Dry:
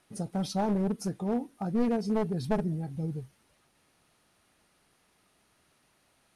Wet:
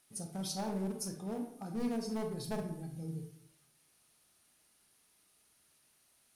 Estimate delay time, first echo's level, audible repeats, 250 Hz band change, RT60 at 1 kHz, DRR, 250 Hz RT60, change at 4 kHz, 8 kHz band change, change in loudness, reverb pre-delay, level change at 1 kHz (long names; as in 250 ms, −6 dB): no echo audible, no echo audible, no echo audible, −8.5 dB, 0.65 s, 4.5 dB, 0.90 s, −1.0 dB, +3.0 dB, −8.0 dB, 26 ms, −9.0 dB